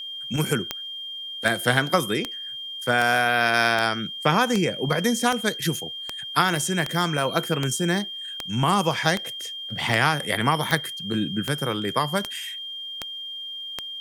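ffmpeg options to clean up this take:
-af "adeclick=t=4,bandreject=f=3.2k:w=30,agate=range=-21dB:threshold=-27dB"

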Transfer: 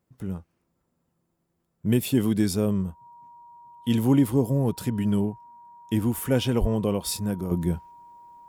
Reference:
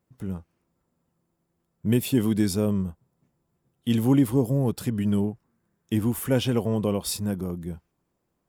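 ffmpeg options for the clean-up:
-filter_complex "[0:a]bandreject=f=950:w=30,asplit=3[a][b][c];[a]afade=t=out:st=6.6:d=0.02[d];[b]highpass=f=140:w=0.5412,highpass=f=140:w=1.3066,afade=t=in:st=6.6:d=0.02,afade=t=out:st=6.72:d=0.02[e];[c]afade=t=in:st=6.72:d=0.02[f];[d][e][f]amix=inputs=3:normalize=0,asetnsamples=n=441:p=0,asendcmd='7.51 volume volume -8.5dB',volume=0dB"

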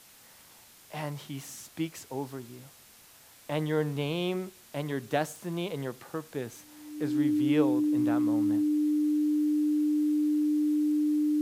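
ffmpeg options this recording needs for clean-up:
-af "adeclick=t=4,bandreject=f=300:w=30,afwtdn=0.002"

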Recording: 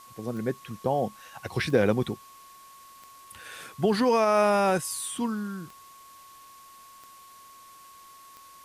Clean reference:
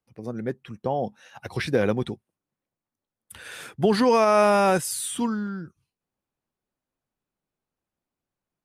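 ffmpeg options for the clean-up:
-af "adeclick=t=4,bandreject=f=1.1k:w=30,afwtdn=0.002,asetnsamples=n=441:p=0,asendcmd='3.07 volume volume 3.5dB',volume=0dB"

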